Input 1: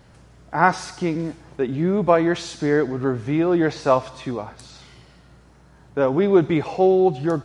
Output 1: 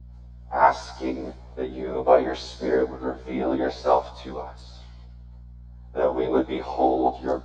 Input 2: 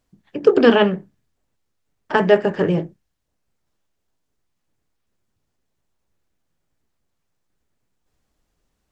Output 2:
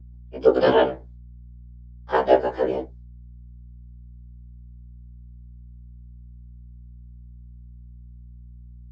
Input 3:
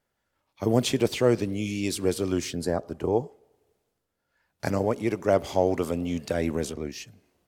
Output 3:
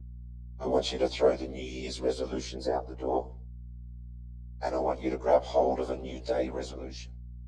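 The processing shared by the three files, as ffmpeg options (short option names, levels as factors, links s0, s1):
-af "agate=range=0.0224:threshold=0.00794:ratio=3:detection=peak,highpass=f=330:w=0.5412,highpass=f=330:w=1.3066,equalizer=f=380:t=q:w=4:g=-6,equalizer=f=760:t=q:w=4:g=3,equalizer=f=1200:t=q:w=4:g=-5,equalizer=f=1800:t=q:w=4:g=-9,equalizer=f=2700:t=q:w=4:g=-10,equalizer=f=5700:t=q:w=4:g=-6,lowpass=f=6000:w=0.5412,lowpass=f=6000:w=1.3066,afftfilt=real='hypot(re,im)*cos(2*PI*random(0))':imag='hypot(re,im)*sin(2*PI*random(1))':win_size=512:overlap=0.75,aeval=exprs='val(0)+0.00282*(sin(2*PI*60*n/s)+sin(2*PI*2*60*n/s)/2+sin(2*PI*3*60*n/s)/3+sin(2*PI*4*60*n/s)/4+sin(2*PI*5*60*n/s)/5)':c=same,afftfilt=real='re*1.73*eq(mod(b,3),0)':imag='im*1.73*eq(mod(b,3),0)':win_size=2048:overlap=0.75,volume=2.51"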